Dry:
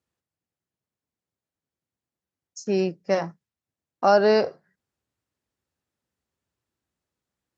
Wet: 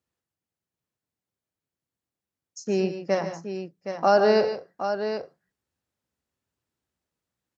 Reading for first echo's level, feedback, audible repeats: -14.5 dB, no regular repeats, 3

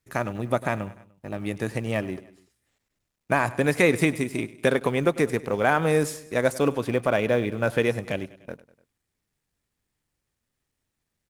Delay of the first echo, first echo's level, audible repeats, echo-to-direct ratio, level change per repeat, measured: 99 ms, -18.5 dB, 3, -17.0 dB, -5.0 dB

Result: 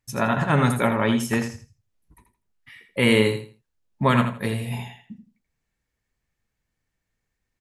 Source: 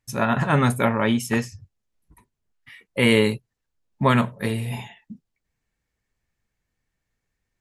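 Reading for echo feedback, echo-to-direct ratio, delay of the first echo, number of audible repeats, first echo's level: 23%, -8.5 dB, 82 ms, 3, -8.5 dB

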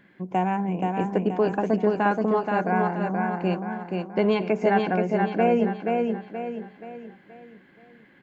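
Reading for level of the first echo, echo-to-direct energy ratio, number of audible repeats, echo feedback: -3.5 dB, -2.5 dB, 5, 42%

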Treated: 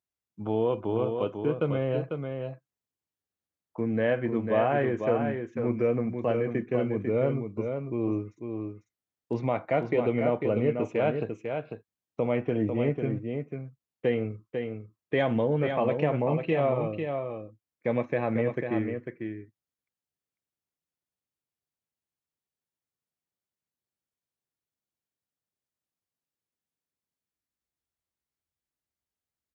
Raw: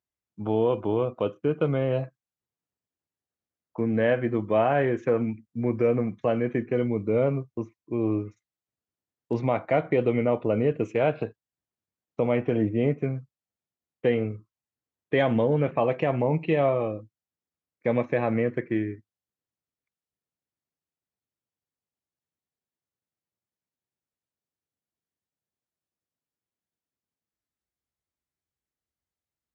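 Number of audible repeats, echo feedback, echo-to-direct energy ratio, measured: 1, no regular repeats, -6.0 dB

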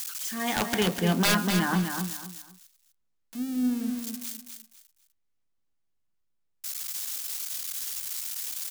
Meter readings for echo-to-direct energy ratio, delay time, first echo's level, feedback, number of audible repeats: -6.0 dB, 250 ms, -6.5 dB, 27%, 3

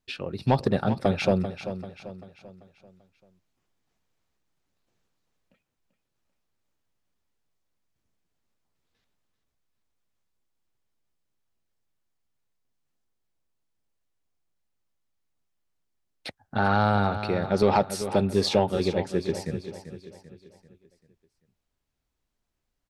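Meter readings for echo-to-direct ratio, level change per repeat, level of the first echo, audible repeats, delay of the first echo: -10.0 dB, -7.0 dB, -11.0 dB, 4, 390 ms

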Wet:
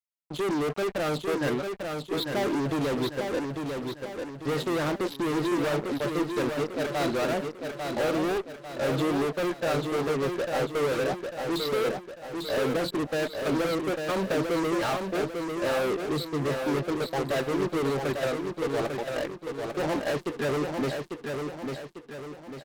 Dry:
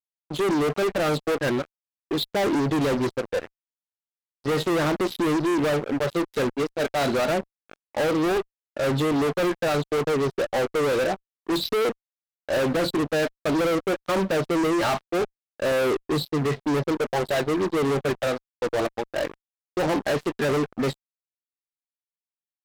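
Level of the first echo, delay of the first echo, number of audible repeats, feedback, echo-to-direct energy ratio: -5.0 dB, 847 ms, 5, 45%, -4.0 dB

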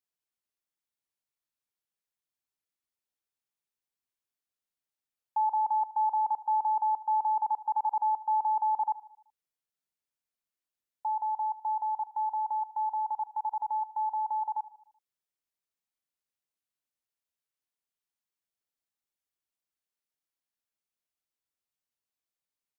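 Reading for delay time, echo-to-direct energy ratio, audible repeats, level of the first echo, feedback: 76 ms, -15.0 dB, 4, -16.5 dB, 52%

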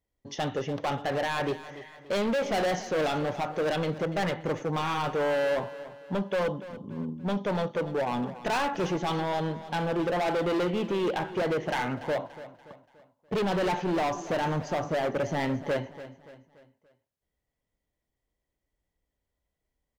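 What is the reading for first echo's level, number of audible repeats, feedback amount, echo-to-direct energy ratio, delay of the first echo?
-15.0 dB, 3, 44%, -14.0 dB, 288 ms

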